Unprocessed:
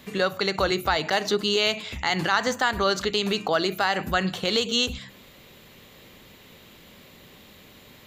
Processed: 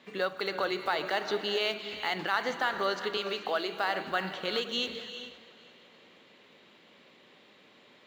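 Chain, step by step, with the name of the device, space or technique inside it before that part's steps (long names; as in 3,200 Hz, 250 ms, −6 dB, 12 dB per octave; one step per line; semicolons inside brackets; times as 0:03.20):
early digital voice recorder (band-pass filter 270–3,900 Hz; one scale factor per block 7 bits)
0:03.17–0:03.72: Bessel high-pass filter 290 Hz
echo machine with several playback heads 171 ms, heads second and third, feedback 45%, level −23 dB
reverb whose tail is shaped and stops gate 450 ms rising, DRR 9 dB
level −6.5 dB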